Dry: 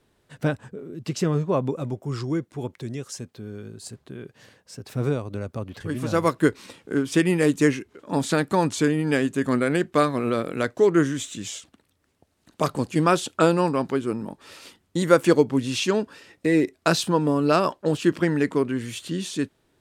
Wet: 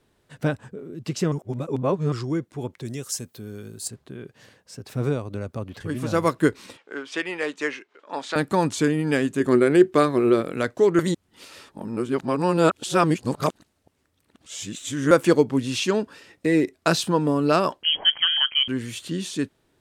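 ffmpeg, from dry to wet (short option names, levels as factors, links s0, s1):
-filter_complex "[0:a]asettb=1/sr,asplit=3[s0][s1][s2];[s0]atrim=end=2.854[s3];[s1]atrim=start=2.85:end=3.88,asetpts=PTS-STARTPTS,afade=t=in:d=0.004:c=qsin,afade=t=out:st=1.026:d=0.004:c=qsin,aemphasis=mode=production:type=50fm[s4];[s2]atrim=start=3.876[s5];[s3][s4]acrossfade=d=0.004:c1=hsin:c2=qsin[s6];[s6][s5]acrossfade=d=0.004:c1=qsin:c2=hsin,asettb=1/sr,asplit=3[s7][s8][s9];[s7]atrim=end=6.774[s10];[s8]atrim=start=6.77:end=8.36,asetpts=PTS-STARTPTS,afade=t=in:d=0.004:c=qsin,afade=t=out:st=1.586:d=0.004:c=qsin,highpass=640,lowpass=4300[s11];[s9]atrim=start=8.356[s12];[s10][s11]acrossfade=d=0.004:c1=hsin:c2=qsin[s13];[s13][s12]acrossfade=d=0.004:c1=qsin:c2=hsin,asettb=1/sr,asplit=3[s14][s15][s16];[s14]atrim=end=9.404[s17];[s15]atrim=start=9.4:end=10.41,asetpts=PTS-STARTPTS,afade=t=in:d=0.004:c=qsin,afade=t=out:st=1.006:d=0.004:c=qsin,equalizer=f=370:t=o:w=0.26:g=13[s18];[s16]atrim=start=10.406[s19];[s17][s18]acrossfade=d=0.004:c1=hsin:c2=qsin[s20];[s20][s19]acrossfade=d=0.004:c1=qsin:c2=hsin,asettb=1/sr,asplit=3[s21][s22][s23];[s21]atrim=end=17.834[s24];[s22]atrim=start=17.83:end=18.68,asetpts=PTS-STARTPTS,afade=t=in:d=0.004:c=qsin,afade=t=out:st=0.846:d=0.004:c=qsin,lowpass=f=2900:t=q:w=0.5098,lowpass=f=2900:t=q:w=0.6013,lowpass=f=2900:t=q:w=0.9,lowpass=f=2900:t=q:w=2.563,afreqshift=-3400[s25];[s23]atrim=start=18.676[s26];[s24][s25]acrossfade=d=0.004:c1=hsin:c2=qsin[s27];[s27][s26]acrossfade=d=0.004:c1=qsin:c2=hsin,asplit=5[s28][s29][s30][s31][s32];[s28]atrim=end=1.322[s33];[s29]atrim=start=1.318:end=2.122,asetpts=PTS-STARTPTS,areverse[s34];[s30]atrim=start=2.118:end=10.992[s35];[s31]atrim=start=10.988:end=15.112,asetpts=PTS-STARTPTS,areverse[s36];[s32]atrim=start=15.108[s37];[s33][s34]acrossfade=d=0.004:c1=hsin:c2=hsin[s38];[s38][s35]acrossfade=d=0.004:c1=hsin:c2=hsin[s39];[s39][s36]acrossfade=d=0.004:c1=hsin:c2=hsin[s40];[s40][s37]acrossfade=d=0.004:c1=hsin:c2=hsin"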